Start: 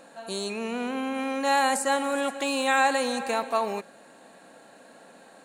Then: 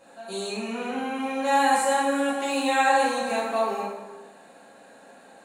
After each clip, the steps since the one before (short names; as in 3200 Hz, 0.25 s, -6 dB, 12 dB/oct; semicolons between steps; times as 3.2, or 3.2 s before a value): plate-style reverb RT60 1.2 s, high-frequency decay 0.65×, DRR -9 dB; gain -8.5 dB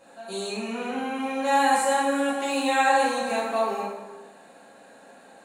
nothing audible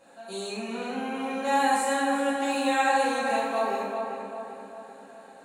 darkening echo 0.392 s, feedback 52%, low-pass 2400 Hz, level -5 dB; gain -3 dB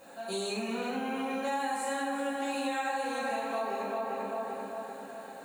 compressor, threshold -34 dBFS, peak gain reduction 14 dB; added noise violet -70 dBFS; gain +3.5 dB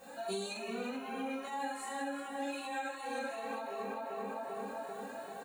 compressor, threshold -36 dBFS, peak gain reduction 8 dB; endless flanger 2.2 ms +2.6 Hz; gain +3 dB